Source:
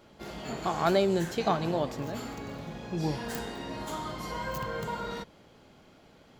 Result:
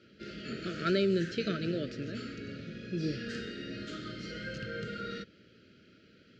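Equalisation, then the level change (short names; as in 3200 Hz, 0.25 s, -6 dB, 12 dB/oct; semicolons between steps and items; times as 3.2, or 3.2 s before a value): Chebyshev band-stop 630–1300 Hz, order 4; speaker cabinet 120–4600 Hz, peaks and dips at 150 Hz -7 dB, 260 Hz -3 dB, 610 Hz -9 dB, 2100 Hz -5 dB, 3500 Hz -7 dB; bell 680 Hz -7.5 dB 2.5 oct; +5.0 dB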